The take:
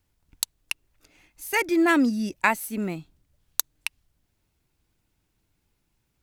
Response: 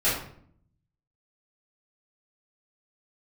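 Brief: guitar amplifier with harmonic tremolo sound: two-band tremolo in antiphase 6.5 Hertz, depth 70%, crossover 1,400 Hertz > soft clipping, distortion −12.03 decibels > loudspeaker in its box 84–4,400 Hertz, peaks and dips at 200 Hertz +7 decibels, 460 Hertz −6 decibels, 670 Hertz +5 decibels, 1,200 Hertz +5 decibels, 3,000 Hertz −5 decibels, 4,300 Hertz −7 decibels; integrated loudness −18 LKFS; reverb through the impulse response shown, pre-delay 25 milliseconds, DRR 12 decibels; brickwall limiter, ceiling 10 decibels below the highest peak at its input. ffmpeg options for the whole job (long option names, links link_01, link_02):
-filter_complex "[0:a]alimiter=limit=-13.5dB:level=0:latency=1,asplit=2[link_01][link_02];[1:a]atrim=start_sample=2205,adelay=25[link_03];[link_02][link_03]afir=irnorm=-1:irlink=0,volume=-25.5dB[link_04];[link_01][link_04]amix=inputs=2:normalize=0,acrossover=split=1400[link_05][link_06];[link_05]aeval=exprs='val(0)*(1-0.7/2+0.7/2*cos(2*PI*6.5*n/s))':channel_layout=same[link_07];[link_06]aeval=exprs='val(0)*(1-0.7/2-0.7/2*cos(2*PI*6.5*n/s))':channel_layout=same[link_08];[link_07][link_08]amix=inputs=2:normalize=0,asoftclip=threshold=-21.5dB,highpass=84,equalizer=frequency=200:width_type=q:width=4:gain=7,equalizer=frequency=460:width_type=q:width=4:gain=-6,equalizer=frequency=670:width_type=q:width=4:gain=5,equalizer=frequency=1200:width_type=q:width=4:gain=5,equalizer=frequency=3000:width_type=q:width=4:gain=-5,equalizer=frequency=4300:width_type=q:width=4:gain=-7,lowpass=frequency=4400:width=0.5412,lowpass=frequency=4400:width=1.3066,volume=11.5dB"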